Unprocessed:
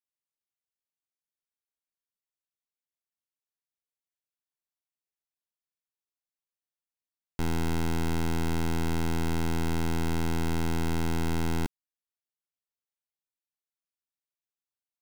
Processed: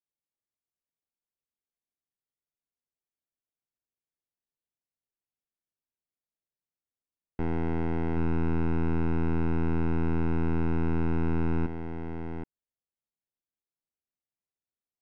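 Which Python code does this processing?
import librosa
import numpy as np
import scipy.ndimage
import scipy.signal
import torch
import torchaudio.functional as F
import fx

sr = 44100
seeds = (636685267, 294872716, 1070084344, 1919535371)

p1 = fx.envelope_flatten(x, sr, power=0.6)
p2 = scipy.signal.sosfilt(scipy.signal.butter(4, 1800.0, 'lowpass', fs=sr, output='sos'), p1)
p3 = fx.peak_eq(p2, sr, hz=1300.0, db=-12.5, octaves=1.6)
p4 = 10.0 ** (-38.5 / 20.0) * np.tanh(p3 / 10.0 ** (-38.5 / 20.0))
p5 = p3 + (p4 * librosa.db_to_amplitude(-8.0))
y = p5 + 10.0 ** (-7.0 / 20.0) * np.pad(p5, (int(775 * sr / 1000.0), 0))[:len(p5)]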